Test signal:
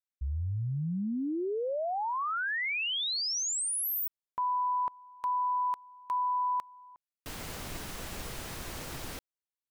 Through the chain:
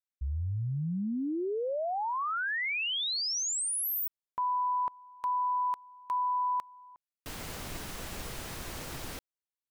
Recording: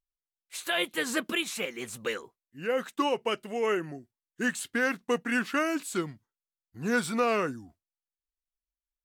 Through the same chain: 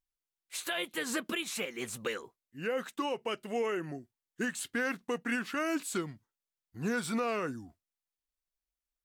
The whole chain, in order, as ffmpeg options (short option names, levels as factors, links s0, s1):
-af "alimiter=limit=0.0668:level=0:latency=1:release=191"